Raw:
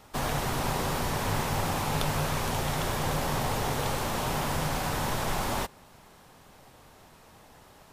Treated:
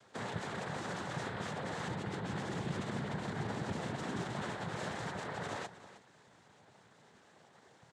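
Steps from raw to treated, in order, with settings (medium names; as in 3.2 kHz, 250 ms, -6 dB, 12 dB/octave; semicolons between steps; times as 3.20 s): spectral gate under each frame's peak -25 dB strong; 1.87–4.32 s: peaking EQ 200 Hz +14 dB 0.51 oct; peak limiter -22.5 dBFS, peak gain reduction 9.5 dB; noise-vocoded speech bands 6; delay 312 ms -15 dB; trim -7 dB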